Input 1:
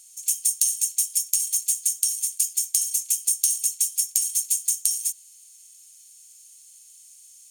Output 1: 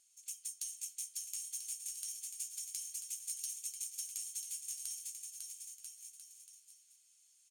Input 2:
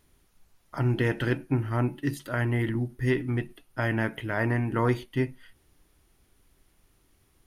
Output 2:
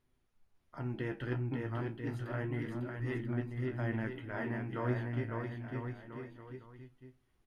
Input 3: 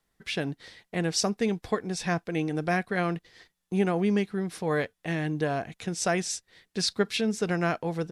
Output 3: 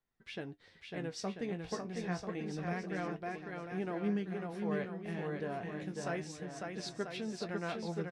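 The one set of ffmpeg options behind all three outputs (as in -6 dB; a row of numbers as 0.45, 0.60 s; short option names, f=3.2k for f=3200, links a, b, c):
-af "lowpass=f=2.8k:p=1,aecho=1:1:550|990|1342|1624|1849:0.631|0.398|0.251|0.158|0.1,flanger=delay=7.9:depth=9.6:regen=49:speed=0.28:shape=sinusoidal,volume=-7.5dB"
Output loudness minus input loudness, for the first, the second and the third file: -19.5, -10.0, -10.5 LU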